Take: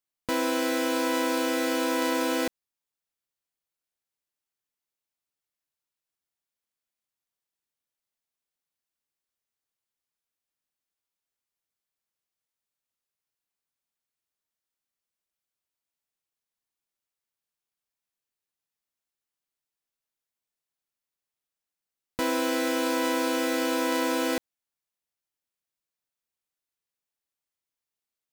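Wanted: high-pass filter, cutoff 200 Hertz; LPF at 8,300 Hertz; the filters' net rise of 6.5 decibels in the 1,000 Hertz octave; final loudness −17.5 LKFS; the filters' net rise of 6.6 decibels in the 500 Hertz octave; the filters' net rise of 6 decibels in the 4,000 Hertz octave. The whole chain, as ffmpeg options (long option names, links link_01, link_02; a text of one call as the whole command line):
ffmpeg -i in.wav -af "highpass=200,lowpass=8300,equalizer=frequency=500:width_type=o:gain=6,equalizer=frequency=1000:width_type=o:gain=5.5,equalizer=frequency=4000:width_type=o:gain=7.5,volume=4.5dB" out.wav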